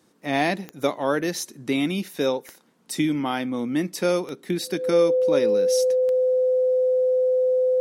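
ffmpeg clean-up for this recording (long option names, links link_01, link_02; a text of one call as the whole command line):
ffmpeg -i in.wav -af "adeclick=threshold=4,bandreject=frequency=510:width=30" out.wav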